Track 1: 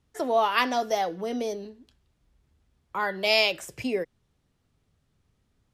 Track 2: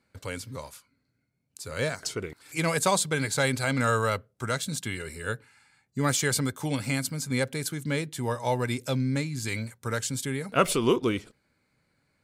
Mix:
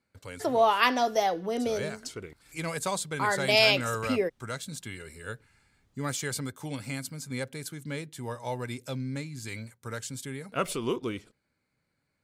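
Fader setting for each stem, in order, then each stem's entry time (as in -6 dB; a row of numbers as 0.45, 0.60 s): +0.5, -7.0 dB; 0.25, 0.00 s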